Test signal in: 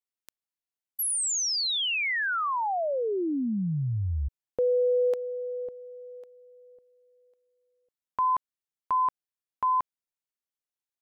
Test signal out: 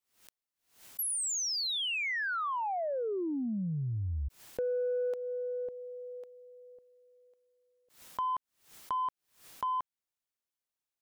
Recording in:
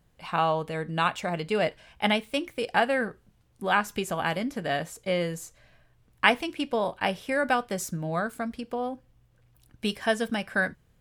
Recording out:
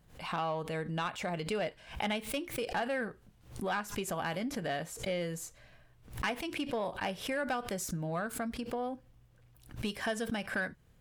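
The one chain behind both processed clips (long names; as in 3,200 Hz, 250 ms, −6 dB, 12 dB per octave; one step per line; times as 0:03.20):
downward compressor 2 to 1, threshold −35 dBFS
soft clipping −24.5 dBFS
background raised ahead of every attack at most 130 dB per second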